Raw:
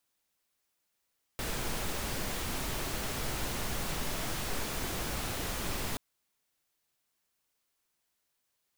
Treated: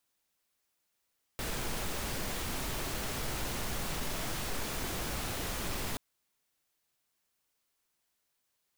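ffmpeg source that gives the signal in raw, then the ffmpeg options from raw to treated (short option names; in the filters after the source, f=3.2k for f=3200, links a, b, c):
-f lavfi -i "anoisesrc=c=pink:a=0.0966:d=4.58:r=44100:seed=1"
-af "asoftclip=type=tanh:threshold=-26dB"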